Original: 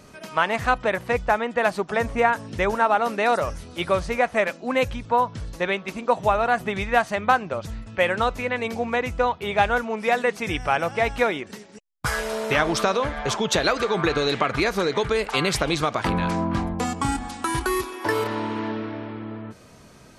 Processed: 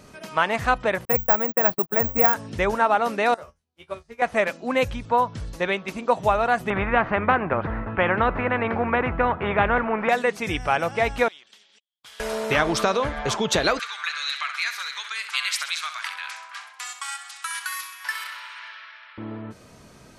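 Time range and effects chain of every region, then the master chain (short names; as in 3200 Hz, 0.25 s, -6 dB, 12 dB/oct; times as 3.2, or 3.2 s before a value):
1.05–2.34 gate -32 dBFS, range -43 dB + tape spacing loss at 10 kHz 23 dB + careless resampling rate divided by 2×, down none, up zero stuff
3.34–4.22 resonator 75 Hz, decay 0.2 s, mix 100% + upward expander 2.5:1, over -48 dBFS
6.7–10.09 LPF 1600 Hz 24 dB/oct + spectral compressor 2:1
11.28–12.2 band-pass 3300 Hz, Q 16 + spectral compressor 2:1
13.79–19.18 HPF 1400 Hz 24 dB/oct + feedback echo 65 ms, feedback 50%, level -10 dB
whole clip: dry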